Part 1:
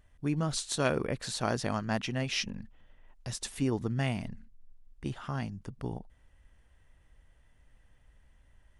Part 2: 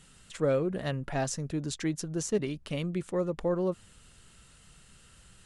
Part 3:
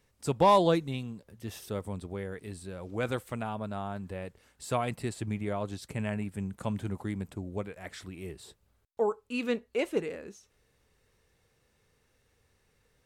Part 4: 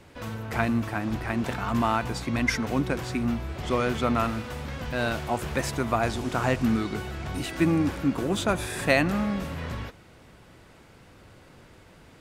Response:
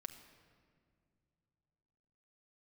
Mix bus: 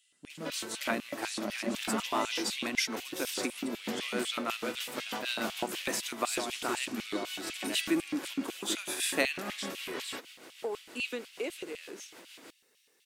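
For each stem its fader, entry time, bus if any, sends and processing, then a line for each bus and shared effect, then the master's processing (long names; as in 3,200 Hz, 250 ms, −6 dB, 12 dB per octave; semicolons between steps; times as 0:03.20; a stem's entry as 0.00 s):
−13.5 dB, 0.00 s, no send, bass and treble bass +6 dB, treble +1 dB; hollow resonant body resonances 210/580/2,000 Hz, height 18 dB, ringing for 100 ms
−19.0 dB, 0.00 s, no send, no processing
−1.0 dB, 1.65 s, no send, downward compressor, threshold −33 dBFS, peak gain reduction 14.5 dB
+2.5 dB, 0.30 s, no send, downward compressor 2 to 1, threshold −36 dBFS, peak gain reduction 11 dB; amplitude tremolo 6.4 Hz, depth 46%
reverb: not used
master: spectral tilt +2.5 dB per octave; auto-filter high-pass square 4 Hz 300–2,900 Hz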